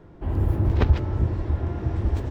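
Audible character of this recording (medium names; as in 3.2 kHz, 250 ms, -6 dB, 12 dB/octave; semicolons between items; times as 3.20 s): noise floor -48 dBFS; spectral tilt -8.5 dB/octave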